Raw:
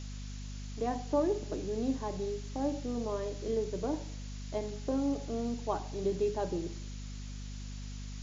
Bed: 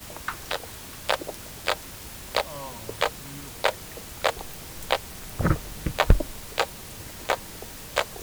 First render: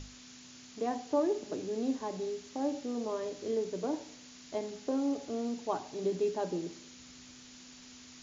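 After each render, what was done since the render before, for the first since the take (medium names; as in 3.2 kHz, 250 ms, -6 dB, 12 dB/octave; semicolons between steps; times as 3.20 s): hum notches 50/100/150/200 Hz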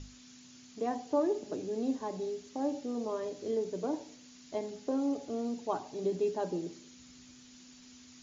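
noise reduction 6 dB, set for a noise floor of -53 dBFS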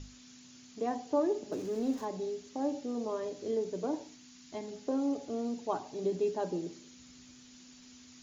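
1.52–2.05 s: jump at every zero crossing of -48.5 dBFS; 4.08–4.68 s: peaking EQ 530 Hz -14.5 dB 0.47 oct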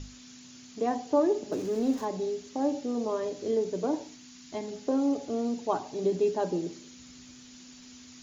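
trim +5 dB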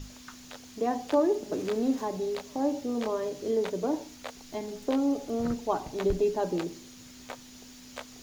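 add bed -17 dB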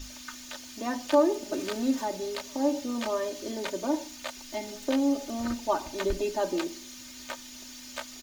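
tilt shelf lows -4.5 dB, about 920 Hz; comb 3.3 ms, depth 85%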